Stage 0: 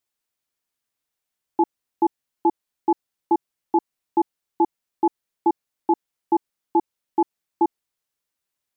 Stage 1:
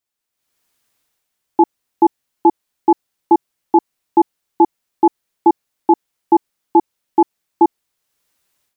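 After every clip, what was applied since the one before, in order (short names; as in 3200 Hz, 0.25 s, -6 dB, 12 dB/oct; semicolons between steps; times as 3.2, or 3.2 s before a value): AGC gain up to 16.5 dB; gain -1 dB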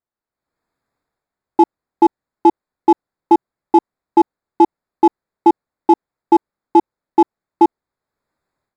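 Wiener smoothing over 15 samples; gain +1 dB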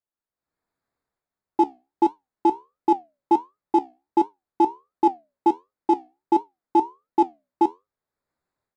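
flange 1.4 Hz, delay 9.3 ms, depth 7.1 ms, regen +69%; gain -2.5 dB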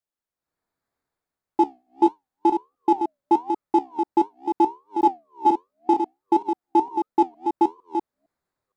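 reverse delay 0.459 s, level -6 dB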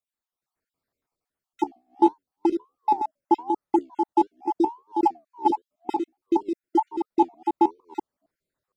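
random spectral dropouts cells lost 36%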